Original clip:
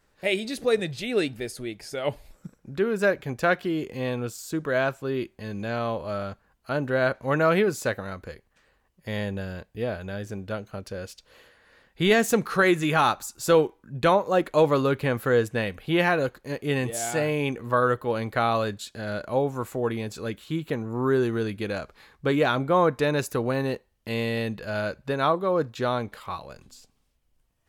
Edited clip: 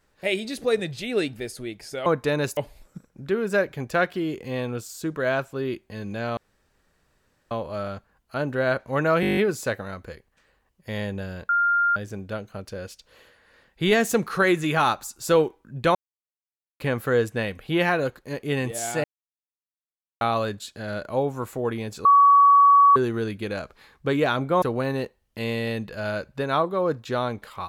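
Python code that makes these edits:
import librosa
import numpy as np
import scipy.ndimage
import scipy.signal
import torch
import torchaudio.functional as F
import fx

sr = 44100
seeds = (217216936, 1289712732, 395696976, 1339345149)

y = fx.edit(x, sr, fx.insert_room_tone(at_s=5.86, length_s=1.14),
    fx.stutter(start_s=7.56, slice_s=0.02, count=9),
    fx.bleep(start_s=9.68, length_s=0.47, hz=1400.0, db=-17.5),
    fx.silence(start_s=14.14, length_s=0.85),
    fx.silence(start_s=17.23, length_s=1.17),
    fx.bleep(start_s=20.24, length_s=0.91, hz=1130.0, db=-11.0),
    fx.move(start_s=22.81, length_s=0.51, to_s=2.06), tone=tone)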